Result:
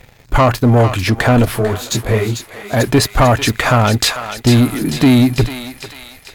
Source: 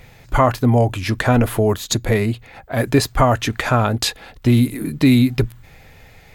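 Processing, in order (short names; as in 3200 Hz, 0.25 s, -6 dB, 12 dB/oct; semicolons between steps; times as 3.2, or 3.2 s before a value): sample leveller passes 2; on a send: thinning echo 0.445 s, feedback 58%, high-pass 1000 Hz, level -7 dB; 1.45–2.73 on the sum: detuned doubles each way 50 cents; gain -1 dB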